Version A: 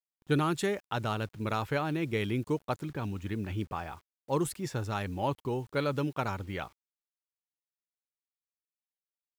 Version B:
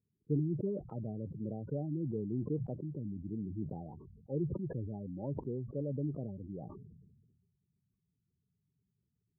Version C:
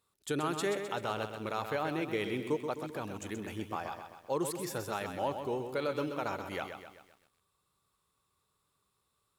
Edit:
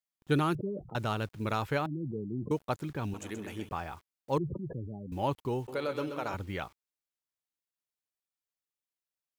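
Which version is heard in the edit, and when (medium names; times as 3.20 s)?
A
0.55–0.95 s: from B
1.86–2.51 s: from B
3.14–3.69 s: from C
4.38–5.12 s: from B
5.68–6.34 s: from C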